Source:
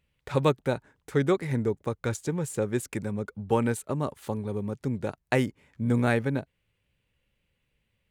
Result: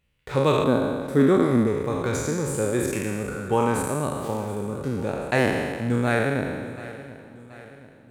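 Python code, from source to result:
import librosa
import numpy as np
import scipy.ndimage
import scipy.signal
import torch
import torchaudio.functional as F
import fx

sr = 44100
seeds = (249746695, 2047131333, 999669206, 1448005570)

y = fx.spec_trails(x, sr, decay_s=1.7)
y = fx.graphic_eq_15(y, sr, hz=(250, 2500, 6300), db=(10, -7, -6), at=(0.64, 1.67))
y = fx.echo_feedback(y, sr, ms=728, feedback_pct=52, wet_db=-17.0)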